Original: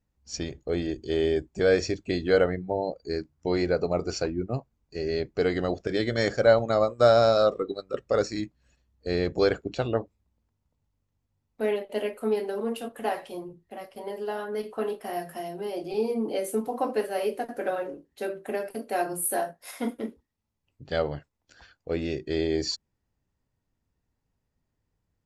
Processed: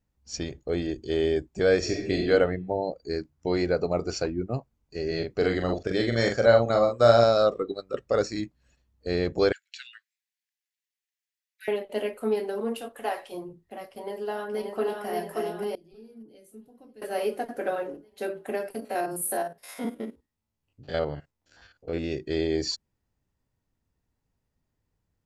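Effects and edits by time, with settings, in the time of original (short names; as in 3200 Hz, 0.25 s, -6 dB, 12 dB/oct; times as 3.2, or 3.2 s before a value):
1.78–2.27 reverb throw, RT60 0.87 s, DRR 0.5 dB
5.07–7.24 doubler 43 ms -4.5 dB
9.52–11.68 steep high-pass 1600 Hz 72 dB/oct
12.8–13.31 bell 160 Hz -8 dB -> -15 dB 1.6 oct
13.9–15.06 echo throw 0.58 s, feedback 55%, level -3 dB
15.75–17.02 passive tone stack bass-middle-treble 10-0-1
18.8–22.12 stepped spectrum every 50 ms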